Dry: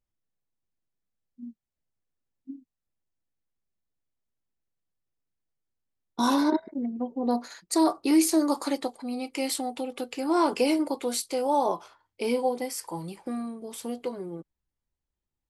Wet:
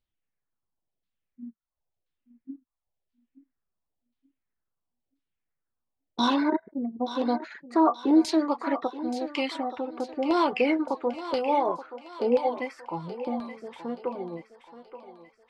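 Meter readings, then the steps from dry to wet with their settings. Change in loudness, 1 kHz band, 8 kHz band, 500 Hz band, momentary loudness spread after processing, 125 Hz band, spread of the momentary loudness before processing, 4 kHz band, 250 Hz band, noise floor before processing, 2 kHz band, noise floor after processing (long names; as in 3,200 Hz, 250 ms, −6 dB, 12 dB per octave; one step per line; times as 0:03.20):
+0.5 dB, +1.5 dB, −15.5 dB, +1.0 dB, 22 LU, can't be measured, 18 LU, −1.0 dB, 0.0 dB, below −85 dBFS, +3.0 dB, −85 dBFS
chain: auto-filter low-pass saw down 0.97 Hz 600–4,100 Hz
reverb reduction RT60 0.54 s
feedback echo with a high-pass in the loop 877 ms, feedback 50%, high-pass 450 Hz, level −10.5 dB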